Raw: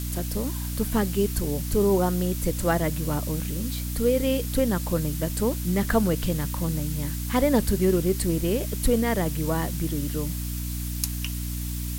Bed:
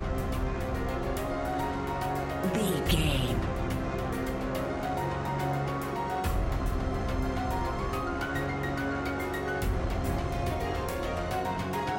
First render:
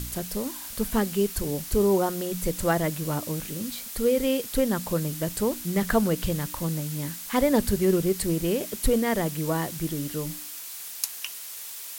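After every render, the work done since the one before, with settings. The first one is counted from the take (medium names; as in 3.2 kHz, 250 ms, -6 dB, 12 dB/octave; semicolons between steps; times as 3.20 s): de-hum 60 Hz, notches 5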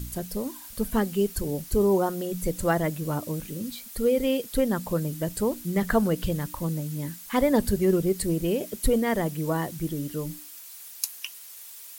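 noise reduction 8 dB, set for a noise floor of -39 dBFS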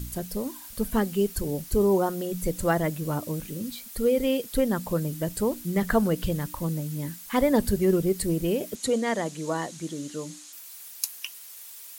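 8.75–10.53 s: cabinet simulation 230–9500 Hz, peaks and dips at 380 Hz -4 dB, 4 kHz +5 dB, 6.7 kHz +9 dB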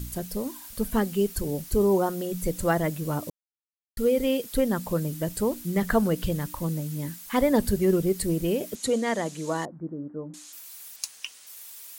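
3.30–3.97 s: mute; 9.65–10.34 s: Bessel low-pass 780 Hz, order 8; 10.96–11.47 s: Savitzky-Golay filter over 9 samples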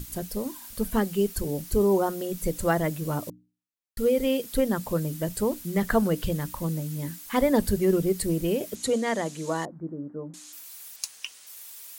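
hum notches 60/120/180/240/300 Hz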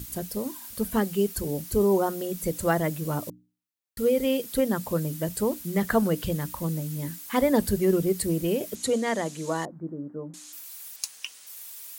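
high-pass 54 Hz; treble shelf 11 kHz +3 dB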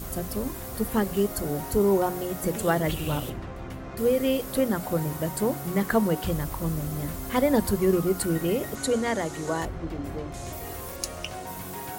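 add bed -6.5 dB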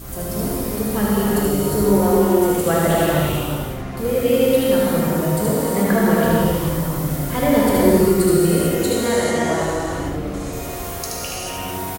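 delay 76 ms -3.5 dB; gated-style reverb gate 470 ms flat, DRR -6 dB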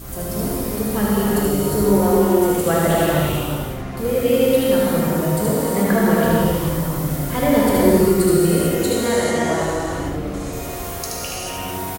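no audible change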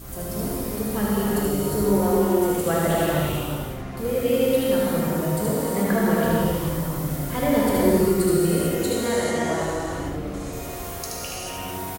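trim -4.5 dB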